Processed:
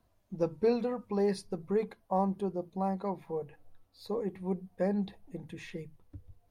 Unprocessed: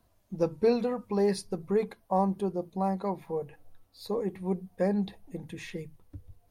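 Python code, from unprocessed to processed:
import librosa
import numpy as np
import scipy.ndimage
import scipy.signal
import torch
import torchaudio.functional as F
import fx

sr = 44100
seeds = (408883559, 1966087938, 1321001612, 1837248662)

y = fx.high_shelf(x, sr, hz=5700.0, db=-6.0)
y = y * librosa.db_to_amplitude(-3.0)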